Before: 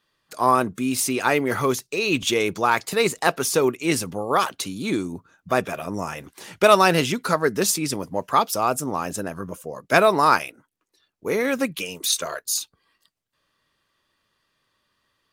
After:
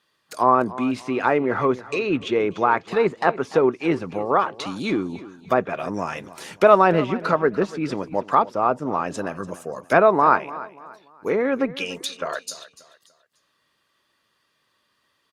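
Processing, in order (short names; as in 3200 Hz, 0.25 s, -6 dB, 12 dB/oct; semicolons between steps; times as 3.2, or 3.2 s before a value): HPF 170 Hz 6 dB/oct; treble ducked by the level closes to 1400 Hz, closed at -19.5 dBFS; feedback echo 0.292 s, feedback 34%, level -17 dB; gain +2.5 dB; Opus 64 kbps 48000 Hz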